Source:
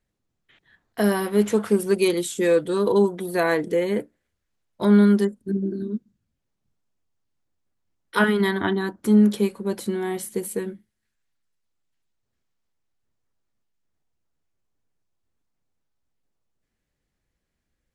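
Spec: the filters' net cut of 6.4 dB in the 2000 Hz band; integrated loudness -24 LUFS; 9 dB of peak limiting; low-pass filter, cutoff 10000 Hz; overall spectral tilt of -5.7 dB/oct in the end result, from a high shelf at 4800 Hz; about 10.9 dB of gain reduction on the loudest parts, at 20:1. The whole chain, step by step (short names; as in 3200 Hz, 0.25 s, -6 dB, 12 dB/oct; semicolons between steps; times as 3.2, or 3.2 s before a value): LPF 10000 Hz; bell 2000 Hz -8 dB; high shelf 4800 Hz -7 dB; compressor 20:1, threshold -23 dBFS; gain +7.5 dB; limiter -15 dBFS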